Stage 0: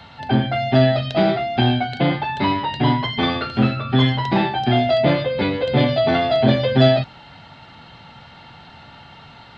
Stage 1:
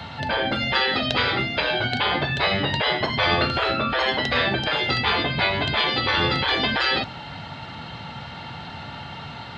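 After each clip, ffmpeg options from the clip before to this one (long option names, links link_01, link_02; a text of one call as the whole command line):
ffmpeg -i in.wav -af "highpass=62,afftfilt=real='re*lt(hypot(re,im),0.251)':imag='im*lt(hypot(re,im),0.251)':win_size=1024:overlap=0.75,lowshelf=frequency=170:gain=3,volume=6.5dB" out.wav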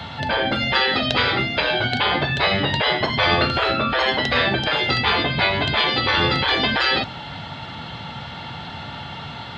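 ffmpeg -i in.wav -af "aeval=exprs='val(0)+0.00501*sin(2*PI*3400*n/s)':channel_layout=same,volume=2.5dB" out.wav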